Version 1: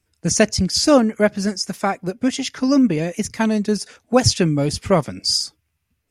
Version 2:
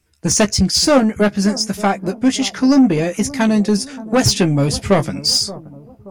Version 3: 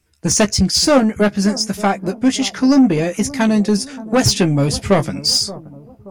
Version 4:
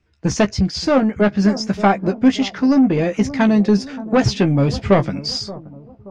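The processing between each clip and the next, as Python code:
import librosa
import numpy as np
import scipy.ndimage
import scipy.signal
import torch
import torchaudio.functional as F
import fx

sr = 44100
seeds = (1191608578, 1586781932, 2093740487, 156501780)

y1 = 10.0 ** (-12.5 / 20.0) * np.tanh(x / 10.0 ** (-12.5 / 20.0))
y1 = fx.doubler(y1, sr, ms=15.0, db=-8.0)
y1 = fx.echo_bbd(y1, sr, ms=577, stages=4096, feedback_pct=48, wet_db=-17.0)
y1 = F.gain(torch.from_numpy(y1), 5.0).numpy()
y2 = y1
y3 = fx.rider(y2, sr, range_db=10, speed_s=0.5)
y3 = fx.air_absorb(y3, sr, metres=180.0)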